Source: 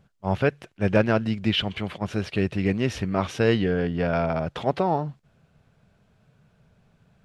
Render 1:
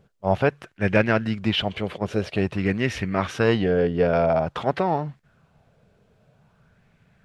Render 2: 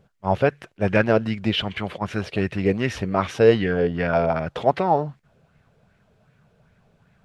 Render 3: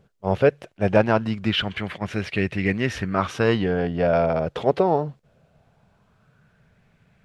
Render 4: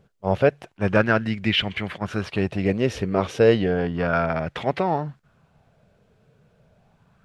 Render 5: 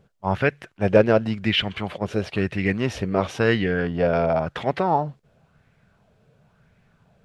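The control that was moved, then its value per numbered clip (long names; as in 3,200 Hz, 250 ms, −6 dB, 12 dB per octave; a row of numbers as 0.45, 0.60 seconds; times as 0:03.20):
auto-filter bell, speed: 0.5, 2.6, 0.21, 0.32, 0.96 Hertz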